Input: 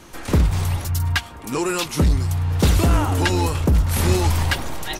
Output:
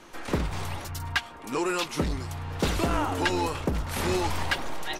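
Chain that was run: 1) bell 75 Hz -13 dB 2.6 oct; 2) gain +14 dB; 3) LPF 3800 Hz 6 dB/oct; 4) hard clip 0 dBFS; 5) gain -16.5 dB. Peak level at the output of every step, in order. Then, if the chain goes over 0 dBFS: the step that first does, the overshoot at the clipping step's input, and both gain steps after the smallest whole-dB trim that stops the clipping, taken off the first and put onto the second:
-8.0, +6.0, +5.0, 0.0, -16.5 dBFS; step 2, 5.0 dB; step 2 +9 dB, step 5 -11.5 dB

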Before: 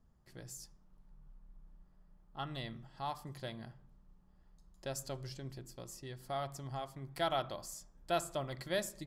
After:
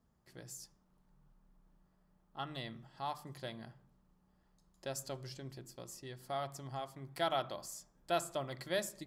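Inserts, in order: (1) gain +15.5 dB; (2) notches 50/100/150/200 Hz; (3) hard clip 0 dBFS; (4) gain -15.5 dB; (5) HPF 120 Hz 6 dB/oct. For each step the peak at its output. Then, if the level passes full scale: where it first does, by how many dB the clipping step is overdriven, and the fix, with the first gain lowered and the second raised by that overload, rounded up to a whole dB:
-6.0, -6.0, -6.0, -21.5, -21.0 dBFS; no overload

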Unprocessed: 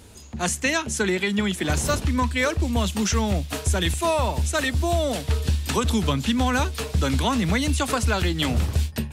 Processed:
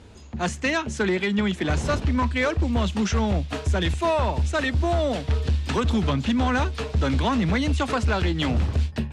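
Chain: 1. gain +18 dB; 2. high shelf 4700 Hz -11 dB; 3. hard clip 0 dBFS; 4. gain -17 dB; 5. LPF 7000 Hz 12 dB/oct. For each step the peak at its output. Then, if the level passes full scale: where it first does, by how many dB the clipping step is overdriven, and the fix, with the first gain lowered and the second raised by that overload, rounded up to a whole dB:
+8.5, +8.0, 0.0, -17.0, -16.5 dBFS; step 1, 8.0 dB; step 1 +10 dB, step 4 -9 dB

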